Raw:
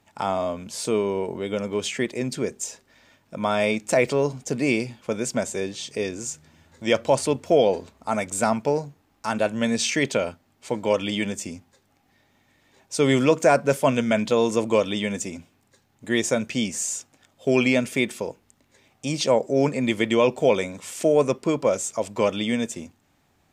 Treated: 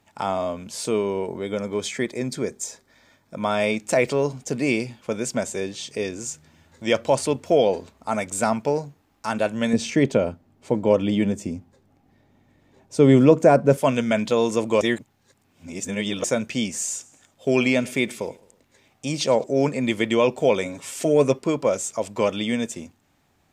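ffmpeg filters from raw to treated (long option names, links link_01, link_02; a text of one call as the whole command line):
ffmpeg -i in.wav -filter_complex "[0:a]asettb=1/sr,asplit=3[link_01][link_02][link_03];[link_01]atrim=end=1.284[link_04];[link_02]atrim=start=1.28:end=3.38,asetpts=PTS-STARTPTS,afade=type=in:duration=0.004:curve=qsin,afade=type=out:start_time=2.096:duration=0.004:curve=qsin,bandreject=frequency=2800:width=5.1[link_05];[link_03]atrim=start=3.376[link_06];[link_04][link_05]acrossfade=duration=0.004:curve1=hsin:curve2=qsin[link_07];[link_07][link_06]acrossfade=duration=0.004:curve1=qsin:curve2=hsin,asettb=1/sr,asplit=3[link_08][link_09][link_10];[link_08]atrim=end=9.734[link_11];[link_09]atrim=start=9.73:end=13.78,asetpts=PTS-STARTPTS,afade=type=in:duration=0.004:curve=qsin,afade=type=out:start_time=4.046:duration=0.004:curve=qsin,tiltshelf=frequency=890:gain=7.5[link_12];[link_10]atrim=start=13.776[link_13];[link_11][link_12]acrossfade=duration=0.004:curve1=hsin:curve2=qsin[link_14];[link_14][link_13]acrossfade=duration=0.004:curve1=qsin:curve2=hsin,asettb=1/sr,asplit=3[link_15][link_16][link_17];[link_15]atrim=end=16.824[link_18];[link_16]atrim=start=16.82:end=19.44,asetpts=PTS-STARTPTS,afade=type=in:duration=0.004:curve=qsin,afade=type=out:start_time=2.616:duration=0.004:curve=qsin,aecho=1:1:107|214|321:0.075|0.0367|0.018,atrim=end_sample=115542[link_19];[link_17]atrim=start=19.436[link_20];[link_18][link_19]acrossfade=duration=0.004:curve1=hsin:curve2=qsin[link_21];[link_21][link_20]acrossfade=duration=0.004:curve1=qsin:curve2=hsin,asettb=1/sr,asplit=3[link_22][link_23][link_24];[link_22]atrim=end=20.654[link_25];[link_23]atrim=start=20.65:end=21.39,asetpts=PTS-STARTPTS,afade=type=in:duration=0.004:curve=qsin,afade=type=out:start_time=0.736:duration=0.004:curve=qsin,aecho=1:1:7.3:0.65,atrim=end_sample=32634[link_26];[link_24]atrim=start=21.386[link_27];[link_25][link_26]acrossfade=duration=0.004:curve1=hsin:curve2=qsin[link_28];[link_28][link_27]acrossfade=duration=0.004:curve1=qsin:curve2=hsin,asplit=3[link_29][link_30][link_31];[link_29]atrim=end=14.812[link_32];[link_30]atrim=start=14.808:end=16.242,asetpts=PTS-STARTPTS,areverse[link_33];[link_31]atrim=start=16.238[link_34];[link_32][link_33]acrossfade=duration=0.004:curve1=hsin:curve2=hsin[link_35];[link_35][link_34]acrossfade=duration=0.004:curve1=hsin:curve2=hsin" out.wav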